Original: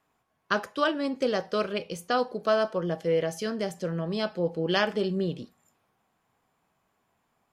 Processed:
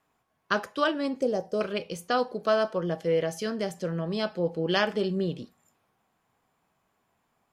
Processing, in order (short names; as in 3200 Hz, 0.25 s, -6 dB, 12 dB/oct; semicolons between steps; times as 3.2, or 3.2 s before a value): 1.21–1.61 band shelf 2200 Hz -15 dB 2.4 oct